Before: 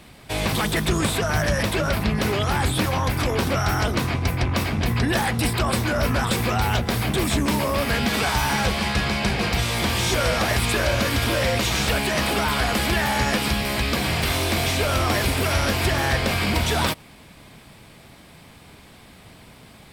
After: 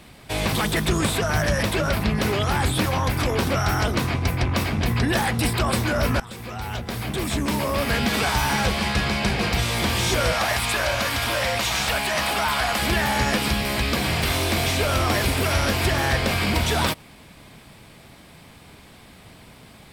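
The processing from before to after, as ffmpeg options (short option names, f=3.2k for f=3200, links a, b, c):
-filter_complex "[0:a]asettb=1/sr,asplit=3[a][b][c];[a]atrim=end=10.324[d];[b]atrim=start=10.32:end=12.82,asetpts=PTS-STARTPTS,afade=t=in:d=0.004:c=qsin,afade=t=out:st=2.496:d=0.004:c=qsin,lowshelf=f=550:t=q:w=1.5:g=-6.5[e];[c]atrim=start=12.816[f];[d][e]acrossfade=d=0.004:c1=hsin:c2=qsin[g];[g][f]acrossfade=d=0.004:c1=qsin:c2=hsin,asplit=2[h][i];[h]atrim=end=6.2,asetpts=PTS-STARTPTS,afade=t=out:st=6.196:d=0.004:c=hsin:silence=0.11885[j];[i]atrim=start=6.2,asetpts=PTS-STARTPTS,afade=t=in:d=1.74:silence=0.11885[k];[j][k]concat=n=2:v=0:a=1"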